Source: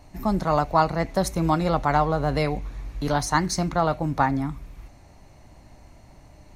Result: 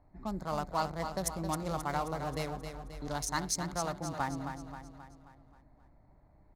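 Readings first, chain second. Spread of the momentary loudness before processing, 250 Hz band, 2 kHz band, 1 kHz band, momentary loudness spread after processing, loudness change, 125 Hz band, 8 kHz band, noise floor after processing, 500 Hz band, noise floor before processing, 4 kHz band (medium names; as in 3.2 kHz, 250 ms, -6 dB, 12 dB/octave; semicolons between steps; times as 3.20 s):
9 LU, -13.0 dB, -11.0 dB, -12.5 dB, 12 LU, -12.0 dB, -13.0 dB, -3.0 dB, -62 dBFS, -13.0 dB, -51 dBFS, -7.5 dB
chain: local Wiener filter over 15 samples; pre-emphasis filter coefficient 0.8; level-controlled noise filter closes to 2 kHz, open at -34 dBFS; feedback delay 266 ms, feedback 51%, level -8 dB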